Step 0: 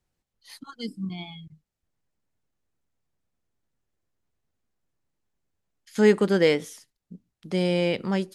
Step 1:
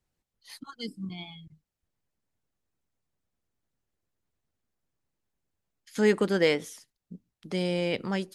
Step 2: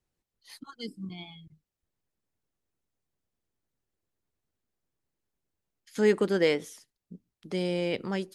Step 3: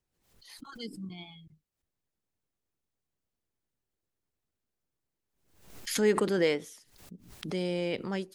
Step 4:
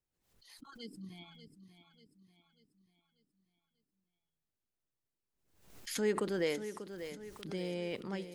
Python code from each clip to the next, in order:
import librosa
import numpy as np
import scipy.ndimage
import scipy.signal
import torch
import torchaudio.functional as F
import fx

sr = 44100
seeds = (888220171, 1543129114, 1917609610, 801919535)

y1 = fx.hpss(x, sr, part='harmonic', gain_db=-5)
y2 = fx.peak_eq(y1, sr, hz=380.0, db=3.5, octaves=0.73)
y2 = y2 * 10.0 ** (-2.5 / 20.0)
y3 = fx.pre_swell(y2, sr, db_per_s=82.0)
y3 = y3 * 10.0 ** (-2.5 / 20.0)
y4 = fx.echo_feedback(y3, sr, ms=590, feedback_pct=46, wet_db=-11.0)
y4 = y4 * 10.0 ** (-7.0 / 20.0)